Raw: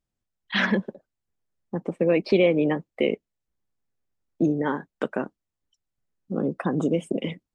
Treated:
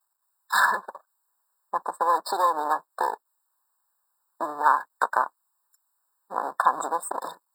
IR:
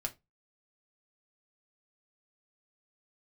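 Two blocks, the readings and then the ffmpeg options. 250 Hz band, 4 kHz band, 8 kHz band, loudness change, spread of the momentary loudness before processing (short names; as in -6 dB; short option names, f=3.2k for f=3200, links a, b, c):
-20.0 dB, -4.5 dB, n/a, -0.5 dB, 13 LU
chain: -af "aeval=exprs='if(lt(val(0),0),0.251*val(0),val(0))':c=same,acompressor=threshold=-28dB:ratio=2,highpass=f=1k:t=q:w=4.9,aexciter=amount=4.7:drive=5.6:freq=6.6k,afftfilt=real='re*eq(mod(floor(b*sr/1024/1800),2),0)':imag='im*eq(mod(floor(b*sr/1024/1800),2),0)':win_size=1024:overlap=0.75,volume=8.5dB"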